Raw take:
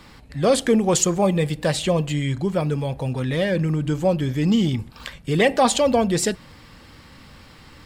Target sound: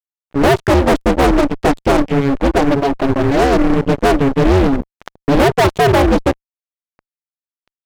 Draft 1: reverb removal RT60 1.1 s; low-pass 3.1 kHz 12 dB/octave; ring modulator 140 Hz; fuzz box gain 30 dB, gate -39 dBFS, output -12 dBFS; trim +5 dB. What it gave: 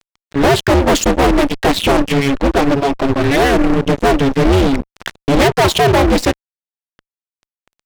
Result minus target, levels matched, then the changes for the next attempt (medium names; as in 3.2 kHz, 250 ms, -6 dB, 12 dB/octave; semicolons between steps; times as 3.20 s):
4 kHz band +5.5 dB
change: low-pass 980 Hz 12 dB/octave